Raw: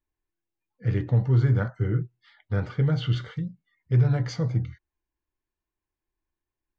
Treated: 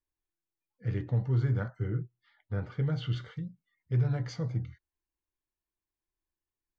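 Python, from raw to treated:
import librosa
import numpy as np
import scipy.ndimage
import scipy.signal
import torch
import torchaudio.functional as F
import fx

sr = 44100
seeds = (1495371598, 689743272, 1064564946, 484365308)

y = fx.high_shelf(x, sr, hz=3300.0, db=-10.0, at=(1.9, 2.72))
y = y * 10.0 ** (-7.0 / 20.0)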